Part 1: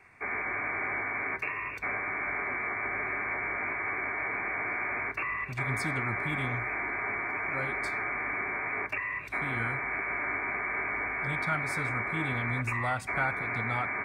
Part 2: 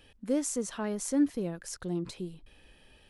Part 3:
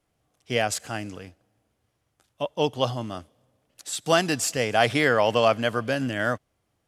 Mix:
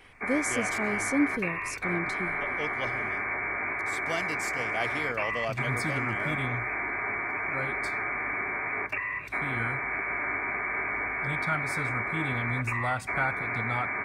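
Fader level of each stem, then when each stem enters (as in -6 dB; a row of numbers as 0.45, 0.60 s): +1.5, +0.5, -13.0 dB; 0.00, 0.00, 0.00 s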